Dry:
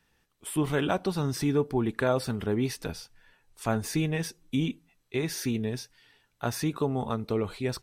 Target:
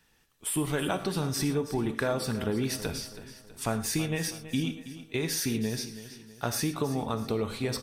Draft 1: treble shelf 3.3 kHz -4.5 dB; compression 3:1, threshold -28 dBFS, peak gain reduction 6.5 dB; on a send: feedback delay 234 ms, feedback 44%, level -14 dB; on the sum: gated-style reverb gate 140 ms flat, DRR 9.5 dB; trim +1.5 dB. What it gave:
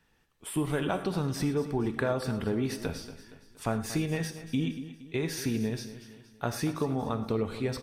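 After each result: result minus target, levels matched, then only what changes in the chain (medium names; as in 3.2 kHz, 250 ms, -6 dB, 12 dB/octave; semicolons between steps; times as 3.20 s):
8 kHz band -7.0 dB; echo 91 ms early
change: treble shelf 3.3 kHz +5.5 dB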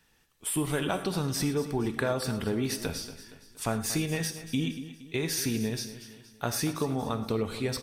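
echo 91 ms early
change: feedback delay 325 ms, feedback 44%, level -14 dB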